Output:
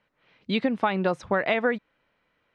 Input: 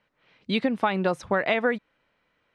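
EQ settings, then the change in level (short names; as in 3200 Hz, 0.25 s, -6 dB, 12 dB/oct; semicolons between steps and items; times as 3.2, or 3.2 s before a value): air absorption 55 m; 0.0 dB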